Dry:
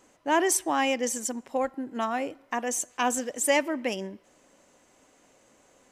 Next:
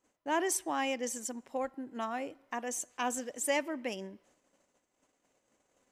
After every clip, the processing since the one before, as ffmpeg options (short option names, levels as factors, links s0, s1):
-af "agate=range=0.224:threshold=0.00112:ratio=16:detection=peak,volume=0.422"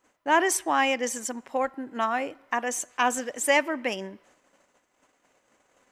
-af "equalizer=f=1500:t=o:w=2.3:g=7.5,volume=1.78"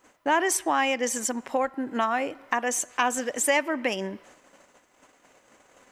-af "acompressor=threshold=0.0178:ratio=2,volume=2.51"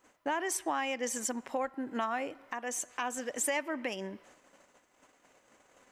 -af "alimiter=limit=0.168:level=0:latency=1:release=401,volume=0.501"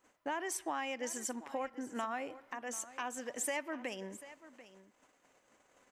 -af "aecho=1:1:740:0.158,volume=0.562"